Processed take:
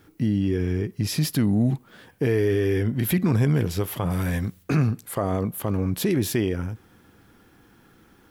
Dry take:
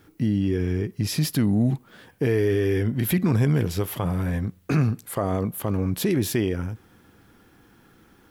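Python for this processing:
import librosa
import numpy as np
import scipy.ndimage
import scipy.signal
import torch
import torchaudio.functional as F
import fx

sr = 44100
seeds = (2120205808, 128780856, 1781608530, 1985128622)

y = fx.high_shelf(x, sr, hz=2200.0, db=10.5, at=(4.1, 4.62), fade=0.02)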